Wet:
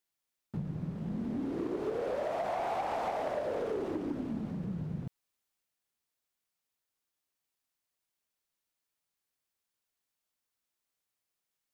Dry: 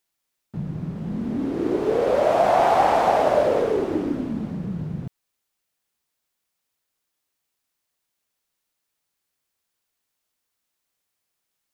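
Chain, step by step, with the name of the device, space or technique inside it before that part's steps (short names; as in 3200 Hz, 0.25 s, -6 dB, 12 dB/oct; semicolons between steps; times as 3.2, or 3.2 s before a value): drum-bus smash (transient shaper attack +6 dB, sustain +2 dB; compressor, threshold -20 dBFS, peak gain reduction 9.5 dB; soft clip -19 dBFS, distortion -16 dB); gain -8 dB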